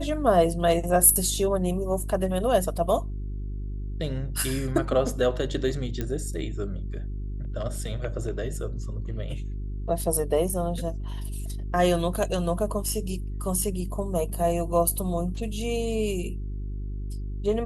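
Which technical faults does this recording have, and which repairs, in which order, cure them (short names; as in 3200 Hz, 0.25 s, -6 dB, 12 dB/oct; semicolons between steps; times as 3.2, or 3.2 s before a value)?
hum 50 Hz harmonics 8 -32 dBFS
6.01 pop -16 dBFS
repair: de-click; de-hum 50 Hz, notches 8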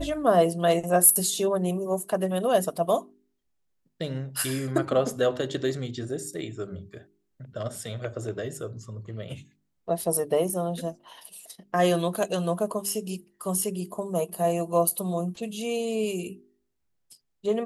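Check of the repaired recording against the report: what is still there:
none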